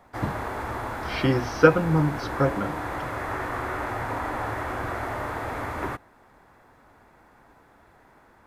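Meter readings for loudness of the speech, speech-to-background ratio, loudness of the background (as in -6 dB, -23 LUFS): -24.0 LUFS, 7.5 dB, -31.5 LUFS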